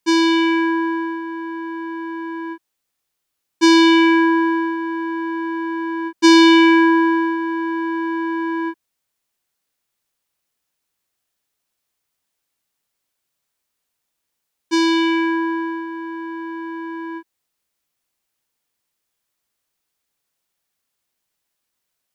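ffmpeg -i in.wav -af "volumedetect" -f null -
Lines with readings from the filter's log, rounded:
mean_volume: -20.9 dB
max_volume: -3.4 dB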